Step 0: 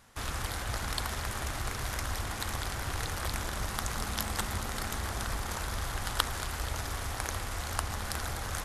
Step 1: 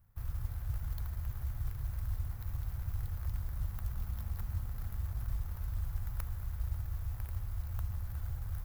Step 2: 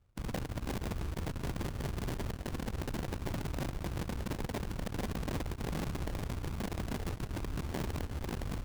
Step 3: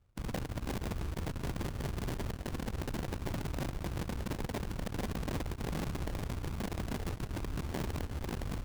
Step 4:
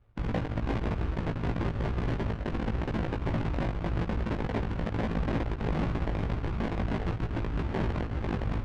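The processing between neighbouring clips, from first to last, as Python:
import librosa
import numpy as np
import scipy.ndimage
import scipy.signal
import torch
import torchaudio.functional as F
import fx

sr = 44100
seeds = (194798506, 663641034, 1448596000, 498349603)

y1 = scipy.ndimage.median_filter(x, 15, mode='constant')
y1 = fx.curve_eq(y1, sr, hz=(110.0, 290.0, 8200.0, 13000.0), db=(0, -22, -16, 5))
y1 = fx.mod_noise(y1, sr, seeds[0], snr_db=30)
y1 = F.gain(torch.from_numpy(y1), 1.0).numpy()
y2 = fx.sample_hold(y1, sr, seeds[1], rate_hz=1300.0, jitter_pct=20)
y2 = (np.mod(10.0 ** (31.0 / 20.0) * y2 + 1.0, 2.0) - 1.0) / 10.0 ** (31.0 / 20.0)
y2 = fx.cheby_harmonics(y2, sr, harmonics=(4, 6, 7), levels_db=(-12, -17, -12), full_scale_db=-31.0)
y3 = y2
y4 = scipy.signal.sosfilt(scipy.signal.butter(2, 2600.0, 'lowpass', fs=sr, output='sos'), y3)
y4 = fx.doubler(y4, sr, ms=18.0, db=-3.5)
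y4 = F.gain(torch.from_numpy(y4), 5.5).numpy()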